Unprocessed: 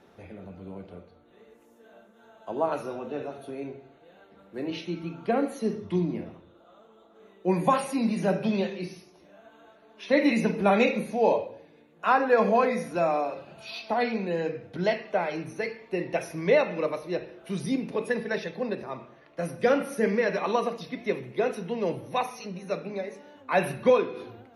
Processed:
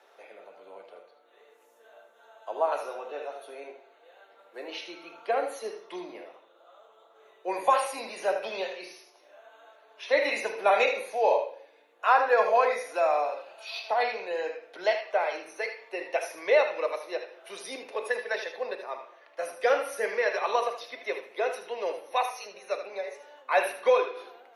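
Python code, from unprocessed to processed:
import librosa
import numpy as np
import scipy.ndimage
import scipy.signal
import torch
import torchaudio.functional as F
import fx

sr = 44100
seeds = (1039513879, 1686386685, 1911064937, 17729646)

p1 = scipy.signal.sosfilt(scipy.signal.butter(4, 500.0, 'highpass', fs=sr, output='sos'), x)
p2 = p1 + fx.echo_single(p1, sr, ms=78, db=-9.5, dry=0)
y = p2 * 10.0 ** (1.0 / 20.0)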